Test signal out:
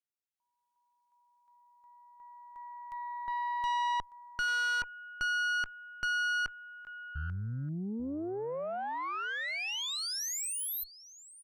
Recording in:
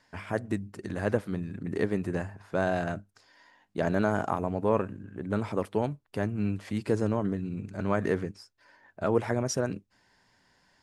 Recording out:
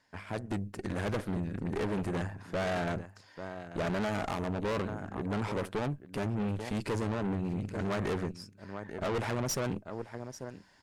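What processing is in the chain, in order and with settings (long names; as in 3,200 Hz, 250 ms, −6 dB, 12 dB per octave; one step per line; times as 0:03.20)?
single-tap delay 839 ms −17.5 dB
automatic gain control gain up to 7.5 dB
tube saturation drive 28 dB, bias 0.75
level −1 dB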